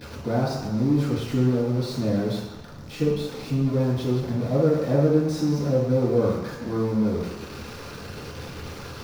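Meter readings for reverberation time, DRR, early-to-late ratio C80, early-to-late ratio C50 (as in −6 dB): 1.1 s, −7.5 dB, 5.0 dB, 2.0 dB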